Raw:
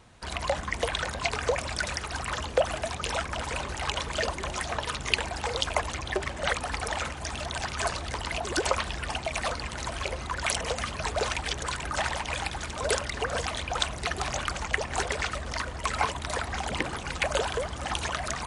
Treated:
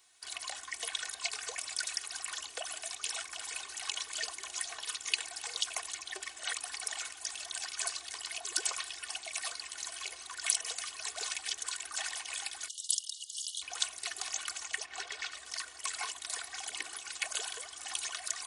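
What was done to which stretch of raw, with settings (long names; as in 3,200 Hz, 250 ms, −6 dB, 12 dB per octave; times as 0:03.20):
0:12.68–0:13.62: linear-phase brick-wall high-pass 2,800 Hz
0:14.85–0:15.36: low-pass filter 3,500 Hz → 5,700 Hz
whole clip: first difference; comb filter 2.7 ms, depth 72%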